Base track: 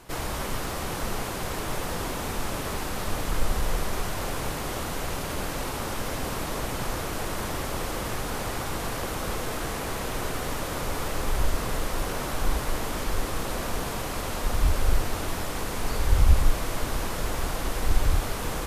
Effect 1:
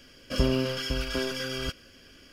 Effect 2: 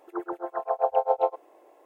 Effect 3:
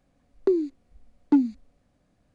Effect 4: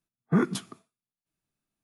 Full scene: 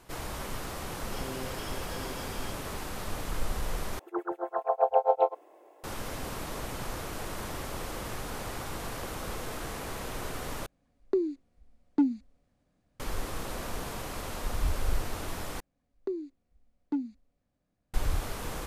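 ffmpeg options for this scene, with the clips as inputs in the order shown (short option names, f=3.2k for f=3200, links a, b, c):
-filter_complex "[3:a]asplit=2[a][b];[0:a]volume=-6.5dB[c];[1:a]alimiter=limit=-18dB:level=0:latency=1:release=71[d];[c]asplit=4[e][f][g][h];[e]atrim=end=3.994[i];[2:a]atrim=end=1.85,asetpts=PTS-STARTPTS,volume=-0.5dB[j];[f]atrim=start=5.836:end=10.664[k];[a]atrim=end=2.34,asetpts=PTS-STARTPTS,volume=-5.5dB[l];[g]atrim=start=12.996:end=15.604[m];[b]atrim=end=2.34,asetpts=PTS-STARTPTS,volume=-12dB[n];[h]atrim=start=17.936[o];[d]atrim=end=2.32,asetpts=PTS-STARTPTS,volume=-12.5dB,afade=t=in:d=0.004:c=hsin,afade=t=out:st=2.316:d=0.004:c=hsin,adelay=810[p];[i][j]acrossfade=d=0.004:c1=hsin:c2=hsin[q];[q][k]acrossfade=d=0.004:c1=hsin:c2=hsin[r];[r][l]acrossfade=d=0.004:c1=hsin:c2=hsin[s];[s][m]acrossfade=d=0.004:c1=hsin:c2=hsin[t];[t][n]acrossfade=d=0.004:c1=hsin:c2=hsin[u];[u][o]acrossfade=d=0.004:c1=hsin:c2=hsin[v];[v][p]amix=inputs=2:normalize=0"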